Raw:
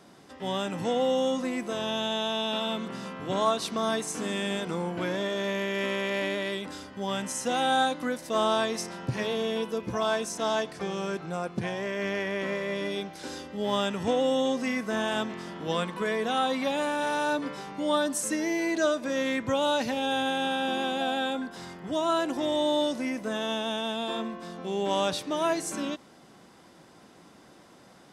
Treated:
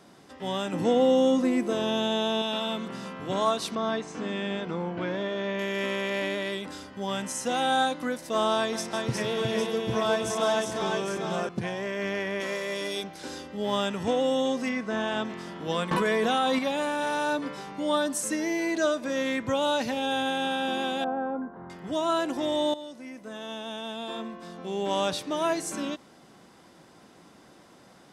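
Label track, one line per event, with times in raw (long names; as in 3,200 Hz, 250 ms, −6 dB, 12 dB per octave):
0.730000	2.420000	parametric band 320 Hz +9 dB 1.3 octaves
3.750000	5.590000	high-frequency loss of the air 160 metres
8.570000	11.490000	multi-tap delay 157/361/805 ms −11.5/−3.5/−8 dB
12.400000	13.040000	bass and treble bass −8 dB, treble +11 dB
14.690000	15.250000	high-frequency loss of the air 80 metres
15.910000	16.590000	envelope flattener amount 100%
21.040000	21.700000	low-pass filter 1,300 Hz 24 dB per octave
22.740000	25.070000	fade in, from −15.5 dB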